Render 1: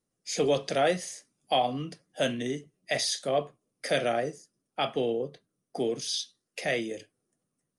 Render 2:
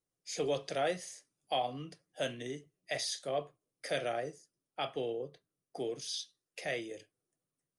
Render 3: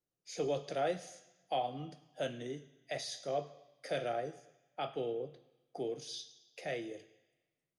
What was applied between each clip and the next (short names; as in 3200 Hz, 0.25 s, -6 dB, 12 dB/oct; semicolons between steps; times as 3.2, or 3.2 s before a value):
bell 220 Hz -11 dB 0.33 oct; gain -7.5 dB
reverb RT60 1.0 s, pre-delay 3 ms, DRR 13 dB; gain -2.5 dB